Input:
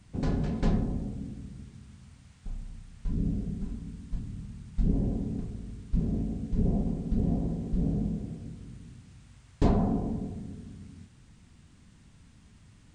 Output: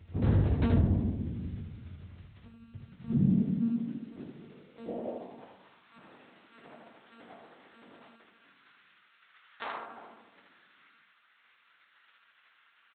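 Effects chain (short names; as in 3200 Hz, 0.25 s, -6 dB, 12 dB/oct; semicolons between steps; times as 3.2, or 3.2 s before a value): monotone LPC vocoder at 8 kHz 230 Hz; high-pass sweep 78 Hz -> 1400 Hz, 2.22–6.19; early reflections 21 ms -6.5 dB, 79 ms -4.5 dB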